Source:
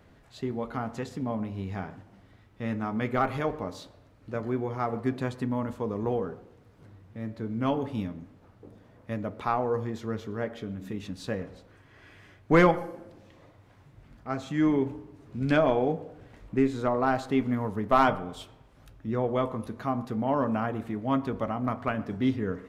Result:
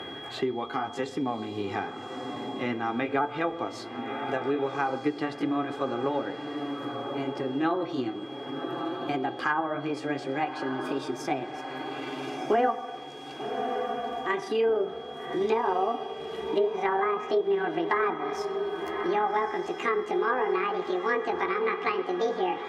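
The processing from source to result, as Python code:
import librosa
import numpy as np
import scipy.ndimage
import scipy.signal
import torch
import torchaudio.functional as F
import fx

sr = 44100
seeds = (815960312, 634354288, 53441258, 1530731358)

p1 = fx.pitch_glide(x, sr, semitones=10.5, runs='starting unshifted')
p2 = scipy.signal.sosfilt(scipy.signal.butter(2, 200.0, 'highpass', fs=sr, output='sos'), p1)
p3 = fx.notch(p2, sr, hz=470.0, q=12.0)
p4 = fx.env_lowpass_down(p3, sr, base_hz=1000.0, full_db=-22.0)
p5 = p4 + 0.59 * np.pad(p4, (int(2.5 * sr / 1000.0), 0))[:len(p4)]
p6 = p5 + 10.0 ** (-54.0 / 20.0) * np.sin(2.0 * np.pi * 3300.0 * np.arange(len(p5)) / sr)
p7 = p6 + fx.echo_diffused(p6, sr, ms=1208, feedback_pct=41, wet_db=-12.0, dry=0)
p8 = fx.band_squash(p7, sr, depth_pct=70)
y = F.gain(torch.from_numpy(p8), 2.0).numpy()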